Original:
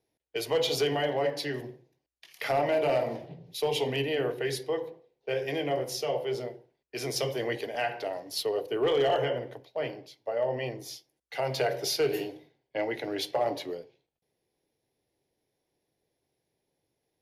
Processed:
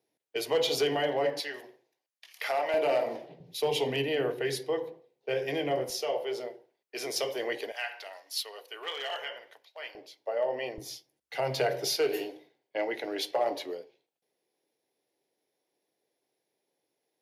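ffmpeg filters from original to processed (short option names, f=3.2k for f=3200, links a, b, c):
-af "asetnsamples=n=441:p=0,asendcmd='1.4 highpass f 640;2.74 highpass f 300;3.4 highpass f 130;5.9 highpass f 370;7.72 highpass f 1300;9.95 highpass f 360;10.78 highpass f 93;11.95 highpass f 300',highpass=180"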